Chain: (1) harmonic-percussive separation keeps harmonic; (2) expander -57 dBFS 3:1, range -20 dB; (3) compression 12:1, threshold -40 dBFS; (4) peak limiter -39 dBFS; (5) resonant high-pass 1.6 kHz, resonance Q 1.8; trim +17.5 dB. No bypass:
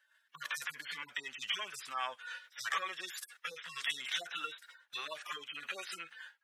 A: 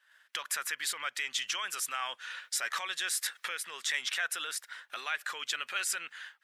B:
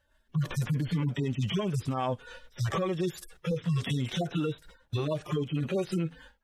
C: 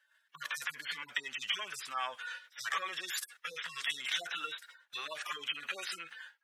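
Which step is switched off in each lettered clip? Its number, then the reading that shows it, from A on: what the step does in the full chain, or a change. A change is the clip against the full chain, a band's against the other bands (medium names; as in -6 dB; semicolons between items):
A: 1, 8 kHz band +11.5 dB; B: 5, 250 Hz band +32.0 dB; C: 3, mean gain reduction 7.5 dB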